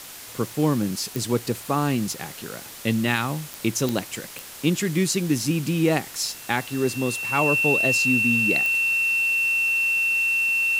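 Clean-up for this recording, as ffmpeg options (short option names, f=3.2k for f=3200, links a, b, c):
-af "adeclick=t=4,bandreject=f=2.7k:w=30,afwtdn=0.011"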